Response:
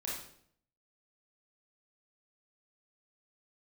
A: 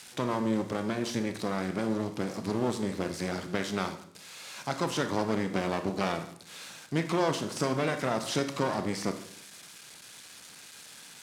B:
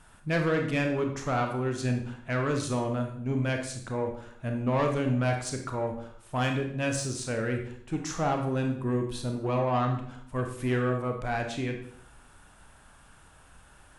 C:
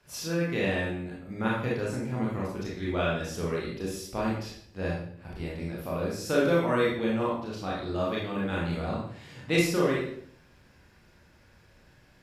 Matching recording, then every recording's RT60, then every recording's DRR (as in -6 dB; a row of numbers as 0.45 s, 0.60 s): C; 0.60 s, 0.60 s, 0.60 s; 7.0 dB, 3.0 dB, -5.5 dB